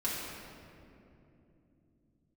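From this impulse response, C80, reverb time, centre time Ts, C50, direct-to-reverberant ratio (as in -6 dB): 0.5 dB, 2.9 s, 0.135 s, -1.5 dB, -8.5 dB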